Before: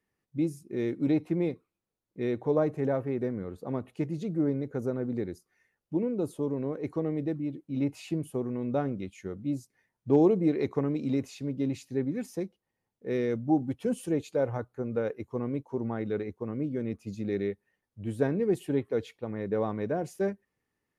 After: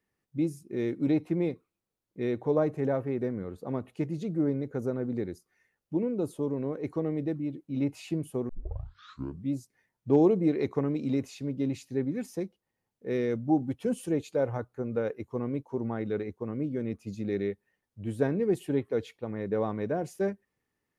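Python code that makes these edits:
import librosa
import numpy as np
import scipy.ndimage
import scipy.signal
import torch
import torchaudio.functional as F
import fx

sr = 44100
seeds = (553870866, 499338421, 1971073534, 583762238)

y = fx.edit(x, sr, fx.tape_start(start_s=8.49, length_s=1.04), tone=tone)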